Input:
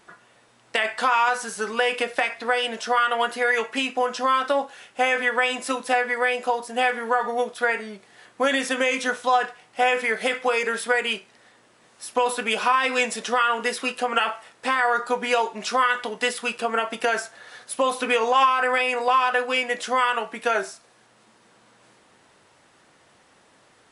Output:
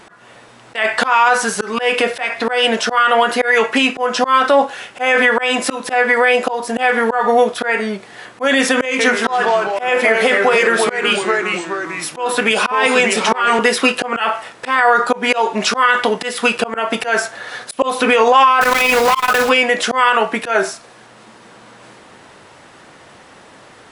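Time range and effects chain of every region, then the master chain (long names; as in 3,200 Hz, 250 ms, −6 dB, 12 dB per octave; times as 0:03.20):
0:08.85–0:13.59: high-pass filter 140 Hz + downward compressor 1.5 to 1, threshold −30 dBFS + delay with pitch and tempo change per echo 141 ms, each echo −2 semitones, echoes 3, each echo −6 dB
0:18.61–0:19.51: one scale factor per block 3 bits + comb filter 4.8 ms, depth 44% + saturating transformer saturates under 1,700 Hz
whole clip: high-shelf EQ 4,600 Hz −6 dB; volume swells 208 ms; boost into a limiter +17.5 dB; level −2 dB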